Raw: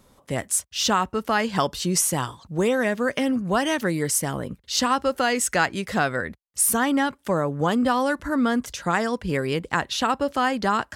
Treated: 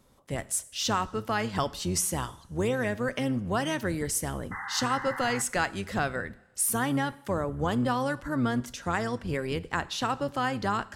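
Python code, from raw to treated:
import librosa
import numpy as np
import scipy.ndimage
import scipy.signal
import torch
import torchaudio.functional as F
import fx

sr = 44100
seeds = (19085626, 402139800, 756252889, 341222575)

y = fx.octave_divider(x, sr, octaves=1, level_db=-4.0)
y = fx.spec_paint(y, sr, seeds[0], shape='noise', start_s=4.51, length_s=0.91, low_hz=750.0, high_hz=2100.0, level_db=-31.0)
y = fx.rev_double_slope(y, sr, seeds[1], early_s=0.64, late_s=2.3, knee_db=-18, drr_db=15.5)
y = y * librosa.db_to_amplitude(-6.5)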